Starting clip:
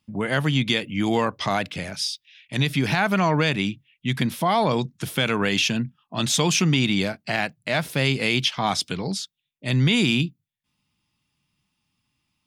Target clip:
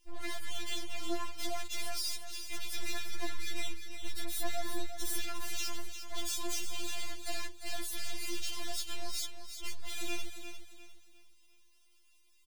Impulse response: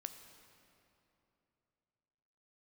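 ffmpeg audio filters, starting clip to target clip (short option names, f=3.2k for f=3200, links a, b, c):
-filter_complex "[0:a]acompressor=threshold=-29dB:ratio=6,aeval=exprs='max(val(0),0)':c=same,firequalizer=gain_entry='entry(1400,0);entry(3500,6);entry(7800,10)':delay=0.05:min_phase=1,asoftclip=type=hard:threshold=-37dB,asettb=1/sr,asplit=3[a][b][c];[a]atrim=end=2.744[d];[b]atrim=start=2.74:end=5.22,asetpts=PTS-STARTPTS,afade=t=in:d=0.004:c=qsin,afade=t=out:st=2.476:d=0.004:c=qsin,aecho=1:1:2.4:0.46,atrim=end_sample=109368[e];[c]atrim=start=5.216[f];[d][e]acrossfade=d=0.004:c1=hsin:c2=qsin[g];[g][f]acrossfade=d=0.004:c1=qsin:c2=hsin,aecho=1:1:351|702|1053|1404:0.355|0.117|0.0386|0.0128,afftfilt=real='re*4*eq(mod(b,16),0)':imag='im*4*eq(mod(b,16),0)':win_size=2048:overlap=0.75,volume=4.5dB"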